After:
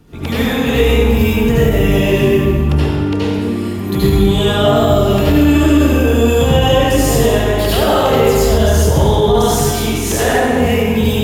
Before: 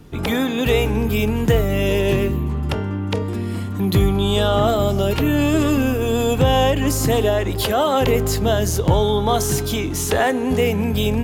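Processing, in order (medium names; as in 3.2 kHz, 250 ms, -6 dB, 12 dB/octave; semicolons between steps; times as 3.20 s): reverberation RT60 1.7 s, pre-delay 69 ms, DRR -9.5 dB; loudness maximiser -3 dB; trim -1 dB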